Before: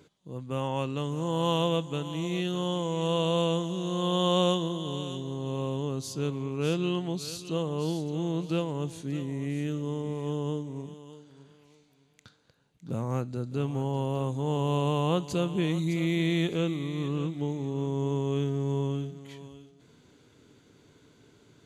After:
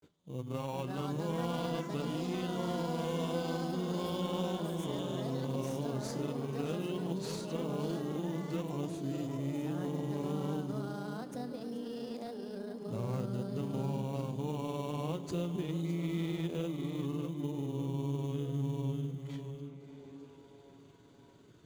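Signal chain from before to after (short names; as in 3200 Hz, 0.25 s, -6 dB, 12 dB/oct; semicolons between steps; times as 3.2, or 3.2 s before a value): on a send at -13 dB: reverb RT60 0.75 s, pre-delay 3 ms; on the sum: compressor, threshold -30 dBFS, peak gain reduction 10.5 dB; grains, spray 31 ms, pitch spread up and down by 0 st; in parallel at -6 dB: sample-rate reducer 3300 Hz, jitter 0%; on the sum: echoes that change speed 0.519 s, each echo +6 st, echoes 3, each echo -6 dB; delay with a stepping band-pass 0.614 s, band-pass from 200 Hz, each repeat 0.7 oct, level -7.5 dB; gain -5 dB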